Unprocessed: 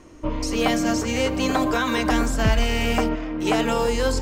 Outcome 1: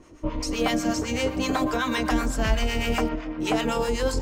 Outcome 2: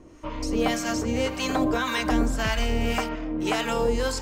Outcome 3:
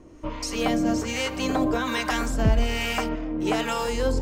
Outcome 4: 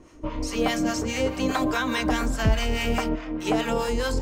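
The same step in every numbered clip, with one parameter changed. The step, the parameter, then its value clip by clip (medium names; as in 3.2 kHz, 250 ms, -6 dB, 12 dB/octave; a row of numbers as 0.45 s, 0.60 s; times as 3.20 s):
harmonic tremolo, rate: 7.9 Hz, 1.8 Hz, 1.2 Hz, 4.8 Hz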